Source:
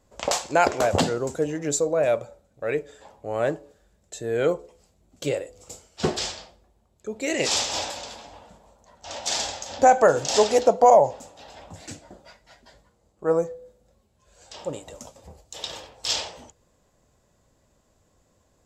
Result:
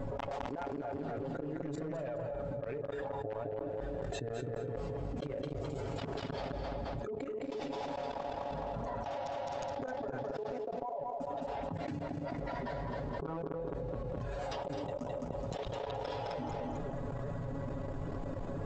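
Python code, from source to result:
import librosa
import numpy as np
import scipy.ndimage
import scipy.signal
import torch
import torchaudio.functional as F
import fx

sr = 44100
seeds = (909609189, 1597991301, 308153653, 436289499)

p1 = fx.spec_quant(x, sr, step_db=15)
p2 = np.where(np.abs(p1) >= 10.0 ** (-21.0 / 20.0), p1, 0.0)
p3 = p1 + (p2 * 10.0 ** (-4.0 / 20.0))
p4 = fx.gate_flip(p3, sr, shuts_db=-16.0, range_db=-32)
p5 = fx.high_shelf(p4, sr, hz=2100.0, db=-8.0)
p6 = p5 + 0.89 * np.pad(p5, (int(7.2 * sr / 1000.0), 0))[:len(p5)]
p7 = p6 + 10.0 ** (-10.0 / 20.0) * np.pad(p6, (int(260 * sr / 1000.0), 0))[:len(p6)]
p8 = 10.0 ** (-20.5 / 20.0) * (np.abs((p7 / 10.0 ** (-20.5 / 20.0) + 3.0) % 4.0 - 2.0) - 1.0)
p9 = fx.spacing_loss(p8, sr, db_at_10k=32)
p10 = fx.level_steps(p9, sr, step_db=22)
p11 = fx.echo_feedback(p10, sr, ms=211, feedback_pct=26, wet_db=-10)
p12 = fx.env_flatten(p11, sr, amount_pct=100)
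y = p12 * 10.0 ** (3.5 / 20.0)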